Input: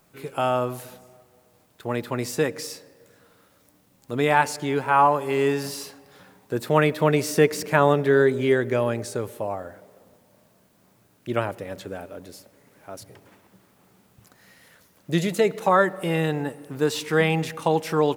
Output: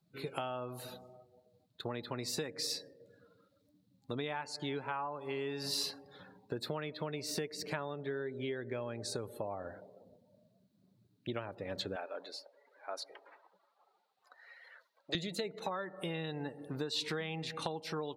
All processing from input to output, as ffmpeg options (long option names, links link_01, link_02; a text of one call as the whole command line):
ffmpeg -i in.wav -filter_complex "[0:a]asettb=1/sr,asplit=3[link_01][link_02][link_03];[link_01]atrim=end=11.964[link_04];[link_02]atrim=start=11.96:end=15.15,asetpts=PTS-STARTPTS,afade=type=in:duration=0.004:curve=qsin,afade=type=out:start_time=3.186:duration=0.004:curve=qsin,highpass=670,highshelf=frequency=4100:gain=-11.5,acontrast=44[link_05];[link_03]atrim=start=15.146[link_06];[link_04][link_05]acrossfade=duration=0.004:curve1=hsin:curve2=qsin[link_07];[link_07][link_06]acrossfade=duration=0.004:curve1=qsin:curve2=hsin,acompressor=threshold=-31dB:ratio=16,afftdn=noise_reduction=22:noise_floor=-52,equalizer=frequency=4100:width_type=o:width=0.61:gain=14,volume=-4dB" out.wav